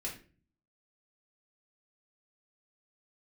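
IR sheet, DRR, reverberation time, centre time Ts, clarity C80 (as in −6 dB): −4.5 dB, 0.40 s, 23 ms, 13.0 dB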